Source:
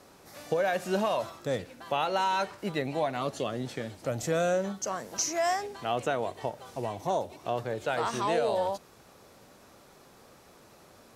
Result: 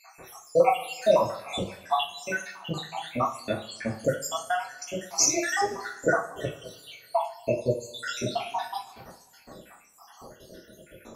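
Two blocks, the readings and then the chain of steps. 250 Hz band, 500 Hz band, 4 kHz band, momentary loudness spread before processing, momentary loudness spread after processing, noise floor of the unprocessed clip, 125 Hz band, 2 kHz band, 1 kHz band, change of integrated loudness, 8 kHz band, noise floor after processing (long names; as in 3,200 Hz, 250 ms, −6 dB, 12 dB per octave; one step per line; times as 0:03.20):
+0.5 dB, +2.0 dB, +4.5 dB, 9 LU, 14 LU, −56 dBFS, +1.5 dB, +4.0 dB, +1.5 dB, +3.0 dB, +7.5 dB, −55 dBFS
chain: time-frequency cells dropped at random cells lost 82%
coupled-rooms reverb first 0.32 s, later 1.7 s, from −21 dB, DRR −3.5 dB
level +7 dB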